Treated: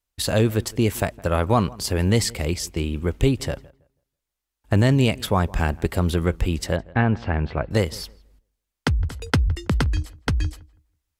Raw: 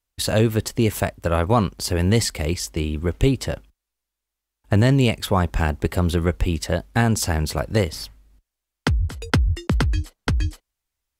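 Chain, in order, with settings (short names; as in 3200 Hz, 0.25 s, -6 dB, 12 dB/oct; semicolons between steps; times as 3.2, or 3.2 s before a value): 6.76–7.71 LPF 2800 Hz 24 dB/oct; darkening echo 0.163 s, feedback 23%, low-pass 2100 Hz, level -22 dB; gain -1 dB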